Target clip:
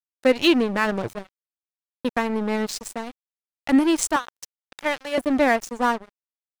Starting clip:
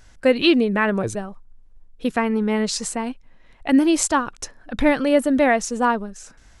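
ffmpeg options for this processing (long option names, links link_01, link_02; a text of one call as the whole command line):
ffmpeg -i in.wav -filter_complex "[0:a]asettb=1/sr,asplit=3[link_01][link_02][link_03];[link_01]atrim=end=4.164[link_04];[link_02]atrim=start=4.16:end=5.18,asetpts=PTS-STARTPTS,afade=type=in:duration=0.004:curve=qsin,afade=type=out:start_time=1.016:duration=0.004:curve=qsin,highpass=640[link_05];[link_03]atrim=start=5.176[link_06];[link_04][link_05]acrossfade=duration=0.004:curve1=hsin:curve2=qsin[link_07];[link_07][link_06]acrossfade=duration=0.004:curve1=qsin:curve2=hsin,aeval=exprs='sgn(val(0))*max(abs(val(0))-0.0422,0)':channel_layout=same" out.wav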